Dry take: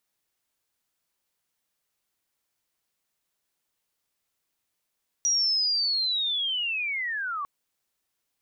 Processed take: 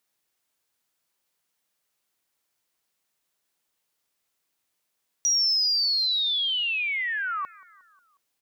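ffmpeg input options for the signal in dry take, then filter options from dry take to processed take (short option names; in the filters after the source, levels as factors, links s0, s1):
-f lavfi -i "aevalsrc='pow(10,(-20.5-8*t/2.2)/20)*sin(2*PI*(5800*t-4700*t*t/(2*2.2)))':d=2.2:s=44100"
-filter_complex "[0:a]lowshelf=f=99:g=-8,asplit=2[s0][s1];[s1]volume=16.8,asoftclip=hard,volume=0.0596,volume=0.266[s2];[s0][s2]amix=inputs=2:normalize=0,aecho=1:1:180|360|540|720:0.0794|0.0461|0.0267|0.0155"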